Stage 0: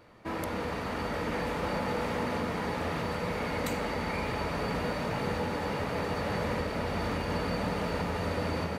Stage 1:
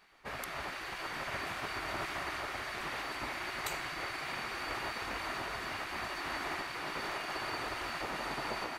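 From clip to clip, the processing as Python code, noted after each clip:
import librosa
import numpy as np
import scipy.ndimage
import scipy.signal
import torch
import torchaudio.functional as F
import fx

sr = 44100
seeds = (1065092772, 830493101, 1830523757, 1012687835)

y = fx.spec_gate(x, sr, threshold_db=-10, keep='weak')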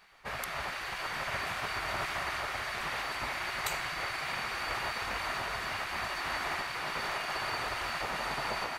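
y = fx.peak_eq(x, sr, hz=310.0, db=-8.5, octaves=0.84)
y = F.gain(torch.from_numpy(y), 4.0).numpy()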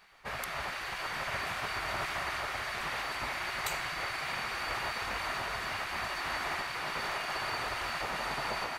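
y = 10.0 ** (-21.0 / 20.0) * np.tanh(x / 10.0 ** (-21.0 / 20.0))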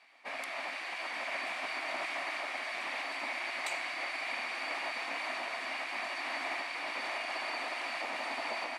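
y = fx.cabinet(x, sr, low_hz=270.0, low_slope=24, high_hz=9800.0, hz=(270.0, 420.0, 670.0, 1400.0, 2300.0, 6400.0), db=(9, -8, 5, -6, 7, -4))
y = F.gain(torch.from_numpy(y), -3.0).numpy()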